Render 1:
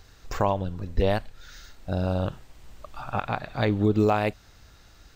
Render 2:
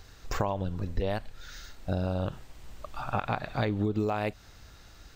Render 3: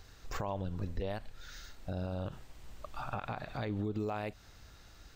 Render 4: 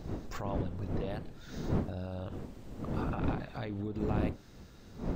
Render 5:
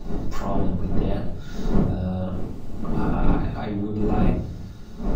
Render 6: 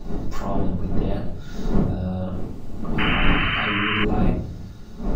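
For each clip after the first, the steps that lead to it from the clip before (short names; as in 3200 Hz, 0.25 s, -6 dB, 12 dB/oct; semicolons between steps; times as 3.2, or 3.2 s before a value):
compressor 12:1, threshold -25 dBFS, peak gain reduction 9.5 dB; gain +1 dB
limiter -22.5 dBFS, peak gain reduction 8.5 dB; gain -4 dB
wind noise 260 Hz -35 dBFS; gain -2 dB
reverb RT60 0.60 s, pre-delay 3 ms, DRR -7 dB
painted sound noise, 2.98–4.05, 990–3100 Hz -24 dBFS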